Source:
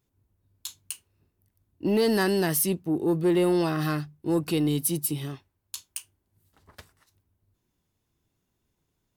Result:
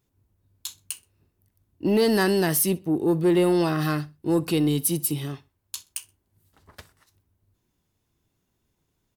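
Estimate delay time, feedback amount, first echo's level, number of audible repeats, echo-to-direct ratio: 63 ms, 28%, −22.0 dB, 2, −21.5 dB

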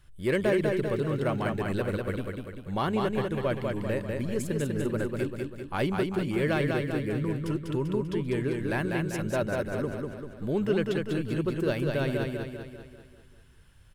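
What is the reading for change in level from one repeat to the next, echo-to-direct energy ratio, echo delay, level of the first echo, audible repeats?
−5.5 dB, −2.0 dB, 196 ms, −3.5 dB, 6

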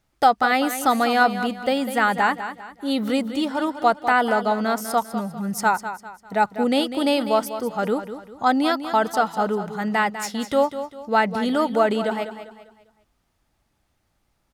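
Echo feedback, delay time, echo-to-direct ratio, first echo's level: 37%, 199 ms, −10.5 dB, −11.0 dB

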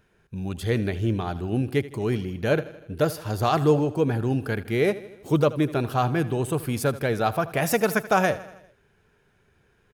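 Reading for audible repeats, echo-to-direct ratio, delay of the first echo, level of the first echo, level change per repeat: 4, −15.0 dB, 80 ms, −17.0 dB, −4.5 dB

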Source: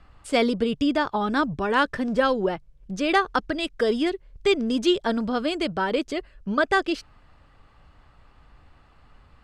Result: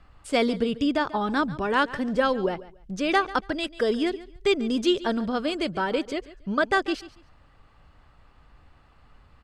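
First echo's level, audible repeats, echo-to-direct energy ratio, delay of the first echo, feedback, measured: −17.5 dB, 2, −17.5 dB, 141 ms, 22%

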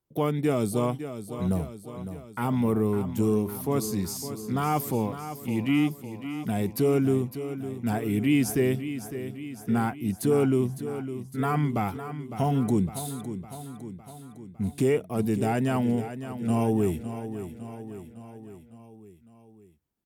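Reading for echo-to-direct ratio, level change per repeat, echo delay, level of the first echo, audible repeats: −9.0 dB, −4.5 dB, 557 ms, −11.0 dB, 5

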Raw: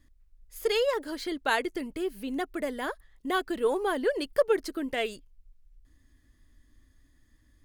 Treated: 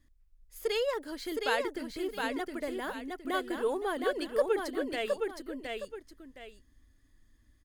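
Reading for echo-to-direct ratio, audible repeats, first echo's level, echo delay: −3.5 dB, 2, −4.0 dB, 715 ms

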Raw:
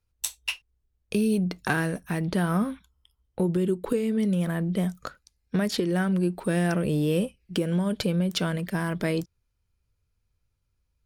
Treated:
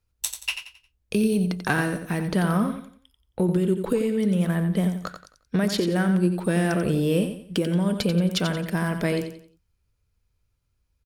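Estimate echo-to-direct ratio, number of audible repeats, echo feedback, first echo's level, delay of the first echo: −8.0 dB, 3, 34%, −8.5 dB, 89 ms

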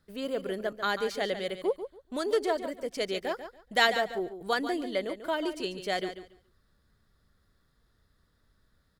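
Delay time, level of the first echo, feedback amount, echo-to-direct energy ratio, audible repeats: 142 ms, −10.5 dB, 20%, −10.5 dB, 2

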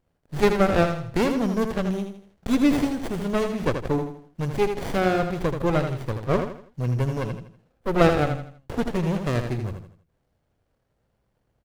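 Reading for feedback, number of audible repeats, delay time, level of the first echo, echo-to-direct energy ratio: 37%, 4, 81 ms, −7.0 dB, −6.5 dB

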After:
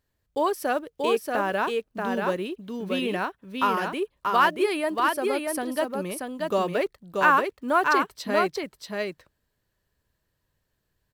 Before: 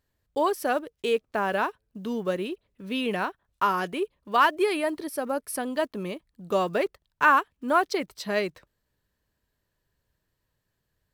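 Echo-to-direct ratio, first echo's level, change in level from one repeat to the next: −3.5 dB, −3.5 dB, repeats not evenly spaced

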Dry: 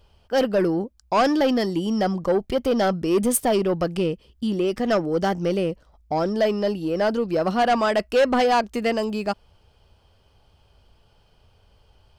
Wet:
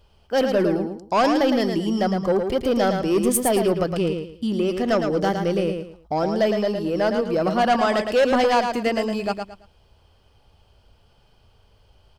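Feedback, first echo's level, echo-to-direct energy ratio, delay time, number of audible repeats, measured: 27%, −6.0 dB, −5.5 dB, 111 ms, 3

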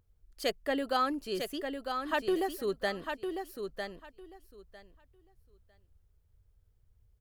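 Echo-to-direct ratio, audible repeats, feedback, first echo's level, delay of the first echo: −6.0 dB, 2, 17%, −6.0 dB, 952 ms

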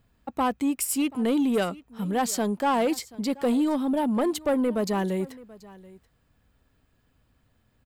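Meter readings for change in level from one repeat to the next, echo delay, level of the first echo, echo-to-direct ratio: repeats not evenly spaced, 732 ms, −21.0 dB, −21.0 dB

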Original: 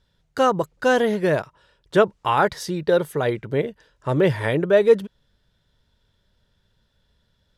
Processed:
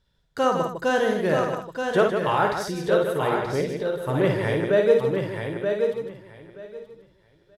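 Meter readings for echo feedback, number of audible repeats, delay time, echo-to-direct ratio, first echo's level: repeats not evenly spaced, 11, 54 ms, 0.0 dB, −5.0 dB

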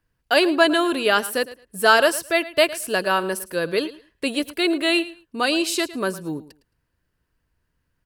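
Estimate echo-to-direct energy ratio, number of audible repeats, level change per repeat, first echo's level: −17.0 dB, 2, −15.0 dB, −17.0 dB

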